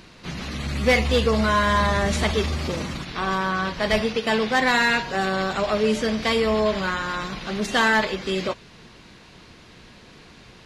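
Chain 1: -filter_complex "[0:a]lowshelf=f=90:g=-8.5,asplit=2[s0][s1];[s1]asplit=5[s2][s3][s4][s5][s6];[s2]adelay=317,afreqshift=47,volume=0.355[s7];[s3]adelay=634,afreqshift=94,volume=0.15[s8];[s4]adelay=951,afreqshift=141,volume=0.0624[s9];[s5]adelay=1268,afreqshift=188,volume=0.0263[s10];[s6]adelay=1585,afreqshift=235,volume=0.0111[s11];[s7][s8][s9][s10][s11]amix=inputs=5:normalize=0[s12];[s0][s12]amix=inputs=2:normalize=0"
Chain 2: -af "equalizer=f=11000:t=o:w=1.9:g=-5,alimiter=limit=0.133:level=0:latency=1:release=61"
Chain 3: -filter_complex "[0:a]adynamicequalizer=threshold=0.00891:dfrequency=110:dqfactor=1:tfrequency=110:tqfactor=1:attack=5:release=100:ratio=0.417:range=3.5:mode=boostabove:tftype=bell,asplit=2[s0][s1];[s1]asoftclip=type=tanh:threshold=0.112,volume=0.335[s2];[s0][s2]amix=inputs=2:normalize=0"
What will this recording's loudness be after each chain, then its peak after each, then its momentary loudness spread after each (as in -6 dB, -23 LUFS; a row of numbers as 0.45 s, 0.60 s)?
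-22.0 LUFS, -26.5 LUFS, -20.0 LUFS; -7.5 dBFS, -17.5 dBFS, -7.5 dBFS; 12 LU, 5 LU, 9 LU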